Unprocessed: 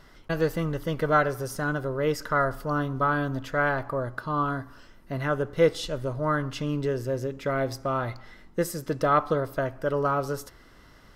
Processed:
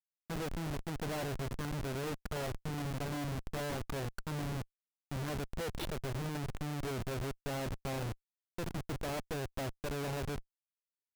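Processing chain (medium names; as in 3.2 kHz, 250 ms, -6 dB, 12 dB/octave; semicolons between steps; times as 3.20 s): touch-sensitive phaser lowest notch 370 Hz, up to 1.2 kHz, full sweep at -23.5 dBFS; Schmitt trigger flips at -32.5 dBFS; upward expansion 1.5:1, over -45 dBFS; trim -5.5 dB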